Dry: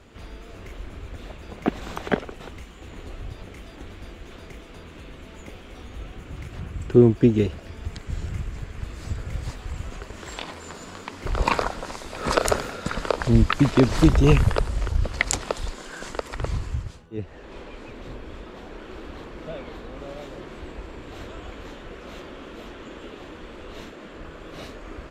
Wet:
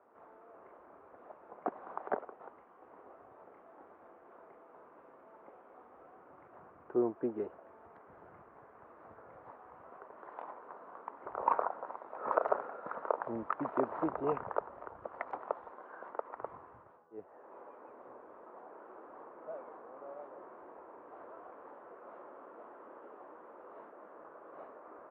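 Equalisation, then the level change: high-pass 740 Hz 12 dB/octave; low-pass 1.1 kHz 24 dB/octave; -2.5 dB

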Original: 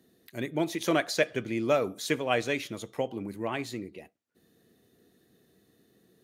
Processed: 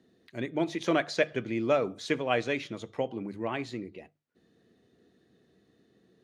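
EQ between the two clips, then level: distance through air 100 m; hum notches 50/100/150 Hz; 0.0 dB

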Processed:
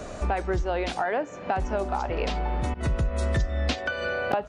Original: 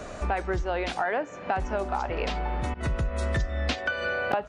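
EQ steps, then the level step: peaking EQ 1.7 kHz -4 dB 2 oct; +2.5 dB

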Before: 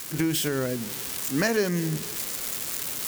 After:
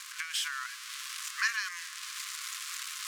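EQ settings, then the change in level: brick-wall FIR high-pass 1 kHz; distance through air 63 m; 0.0 dB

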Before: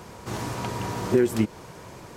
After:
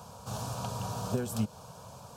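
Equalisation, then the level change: dynamic bell 950 Hz, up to -5 dB, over -50 dBFS, Q 3.6; high-pass 71 Hz; static phaser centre 820 Hz, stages 4; -1.5 dB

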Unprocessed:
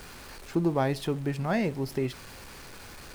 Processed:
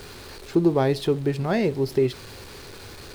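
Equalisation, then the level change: fifteen-band graphic EQ 100 Hz +8 dB, 400 Hz +9 dB, 4 kHz +6 dB; +1.5 dB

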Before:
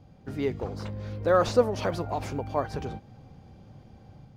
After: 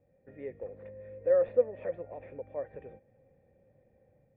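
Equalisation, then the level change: cascade formant filter e; 0.0 dB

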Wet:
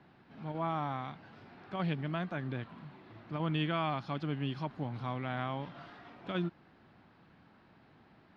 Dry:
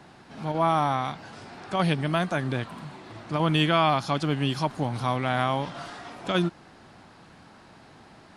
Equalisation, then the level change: distance through air 320 m; bass shelf 80 Hz -7.5 dB; peaking EQ 730 Hz -5.5 dB 2.3 oct; -6.0 dB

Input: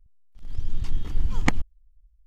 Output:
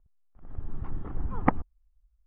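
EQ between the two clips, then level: low-pass 1.2 kHz 24 dB/octave; tilt EQ +3 dB/octave; band-stop 950 Hz, Q 13; +6.5 dB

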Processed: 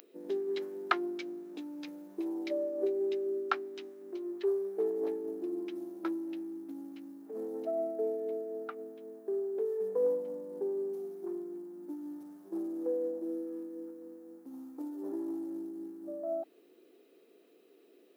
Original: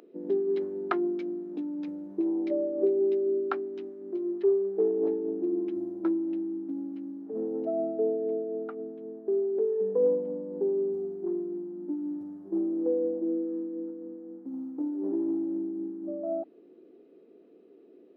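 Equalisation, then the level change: tilt EQ +5 dB/octave; 0.0 dB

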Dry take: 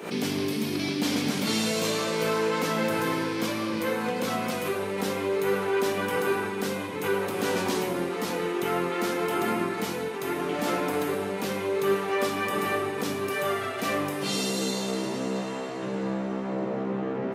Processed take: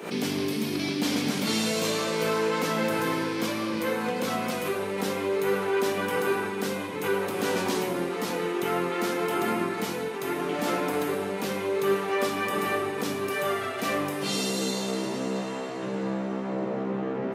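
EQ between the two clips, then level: high-pass 94 Hz; 0.0 dB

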